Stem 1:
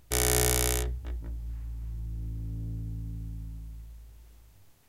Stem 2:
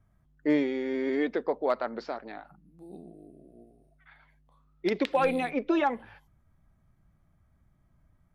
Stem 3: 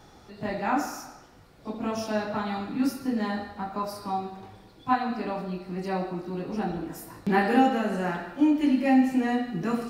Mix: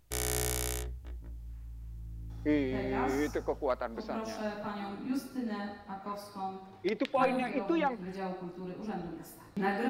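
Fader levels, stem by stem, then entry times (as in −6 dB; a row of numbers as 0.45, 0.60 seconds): −7.5, −4.5, −8.5 decibels; 0.00, 2.00, 2.30 seconds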